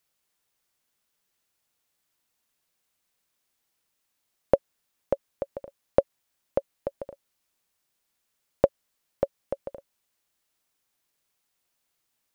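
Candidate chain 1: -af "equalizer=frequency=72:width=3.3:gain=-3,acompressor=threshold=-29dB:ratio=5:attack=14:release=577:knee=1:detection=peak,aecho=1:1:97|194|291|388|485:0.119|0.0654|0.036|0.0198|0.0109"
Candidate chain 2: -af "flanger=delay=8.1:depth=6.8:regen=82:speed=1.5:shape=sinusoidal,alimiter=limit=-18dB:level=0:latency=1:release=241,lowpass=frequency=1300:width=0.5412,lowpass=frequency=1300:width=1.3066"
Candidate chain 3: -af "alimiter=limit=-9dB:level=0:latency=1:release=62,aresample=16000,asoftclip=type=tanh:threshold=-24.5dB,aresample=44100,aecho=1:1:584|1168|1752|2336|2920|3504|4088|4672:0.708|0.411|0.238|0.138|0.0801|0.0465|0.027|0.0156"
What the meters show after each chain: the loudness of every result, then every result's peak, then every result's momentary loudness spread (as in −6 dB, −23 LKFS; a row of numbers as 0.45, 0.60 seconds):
−37.0, −42.0, −42.0 LKFS; −4.5, −18.0, −20.0 dBFS; 17, 9, 16 LU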